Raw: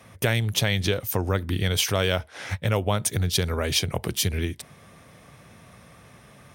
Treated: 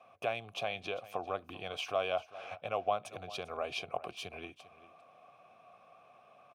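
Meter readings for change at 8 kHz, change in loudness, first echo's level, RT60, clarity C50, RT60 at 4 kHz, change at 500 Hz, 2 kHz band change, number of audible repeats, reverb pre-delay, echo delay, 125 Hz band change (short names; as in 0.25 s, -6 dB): -26.0 dB, -13.0 dB, -17.5 dB, none, none, none, -8.5 dB, -12.5 dB, 1, none, 0.397 s, -29.0 dB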